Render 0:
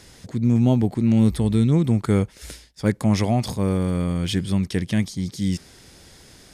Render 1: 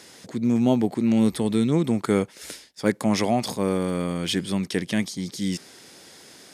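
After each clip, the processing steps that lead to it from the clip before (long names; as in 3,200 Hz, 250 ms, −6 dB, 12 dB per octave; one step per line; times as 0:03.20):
high-pass filter 240 Hz 12 dB per octave
level +2 dB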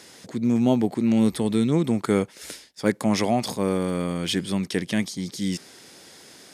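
no processing that can be heard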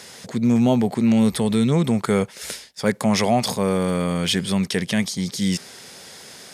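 parametric band 310 Hz −13 dB 0.31 octaves
in parallel at +1 dB: brickwall limiter −18 dBFS, peak gain reduction 9.5 dB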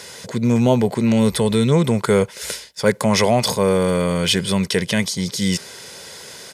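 comb filter 2 ms, depth 38%
level +3.5 dB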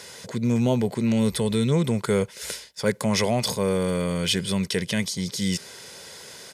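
dynamic equaliser 890 Hz, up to −4 dB, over −32 dBFS, Q 0.74
level −5 dB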